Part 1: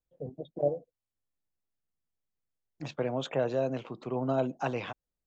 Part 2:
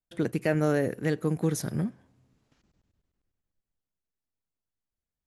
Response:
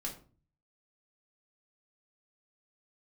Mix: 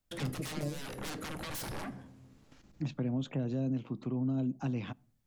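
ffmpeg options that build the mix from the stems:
-filter_complex "[0:a]lowshelf=frequency=340:width_type=q:width=1.5:gain=9.5,volume=-2.5dB,asplit=2[link_01][link_02];[link_02]volume=-23dB[link_03];[1:a]acompressor=threshold=-26dB:ratio=6,aeval=exprs='0.0398*sin(PI/2*3.98*val(0)/0.0398)':channel_layout=same,volume=-10.5dB,asplit=2[link_04][link_05];[link_05]volume=-6.5dB[link_06];[2:a]atrim=start_sample=2205[link_07];[link_03][link_06]amix=inputs=2:normalize=0[link_08];[link_08][link_07]afir=irnorm=-1:irlink=0[link_09];[link_01][link_04][link_09]amix=inputs=3:normalize=0,acrossover=split=410|3000[link_10][link_11][link_12];[link_11]acompressor=threshold=-43dB:ratio=3[link_13];[link_10][link_13][link_12]amix=inputs=3:normalize=0,alimiter=level_in=1.5dB:limit=-24dB:level=0:latency=1:release=351,volume=-1.5dB"

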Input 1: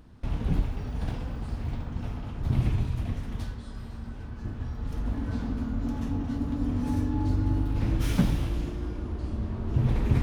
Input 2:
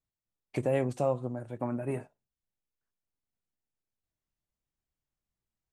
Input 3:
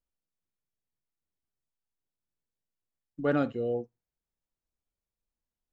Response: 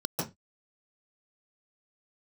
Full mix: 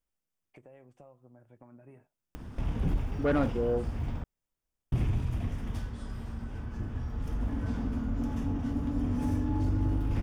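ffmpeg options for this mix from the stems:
-filter_complex "[0:a]acompressor=mode=upward:threshold=-31dB:ratio=2.5,adelay=2350,volume=-1dB,asplit=3[link_01][link_02][link_03];[link_01]atrim=end=4.24,asetpts=PTS-STARTPTS,afade=type=out:start_time=4.236:duration=0.004:curve=hsin[link_04];[link_02]atrim=start=4.24:end=4.92,asetpts=PTS-STARTPTS,volume=0[link_05];[link_03]atrim=start=4.92,asetpts=PTS-STARTPTS,afade=type=in:duration=0.004:curve=hsin[link_06];[link_04][link_05][link_06]concat=n=3:v=0:a=1[link_07];[1:a]bass=frequency=250:gain=-11,treble=frequency=4000:gain=-11,acompressor=threshold=-38dB:ratio=4,asubboost=boost=6:cutoff=230,volume=-14dB[link_08];[2:a]volume=2.5dB[link_09];[link_07][link_08][link_09]amix=inputs=3:normalize=0,equalizer=frequency=4100:width_type=o:width=0.21:gain=-10.5,asoftclip=type=tanh:threshold=-19.5dB"

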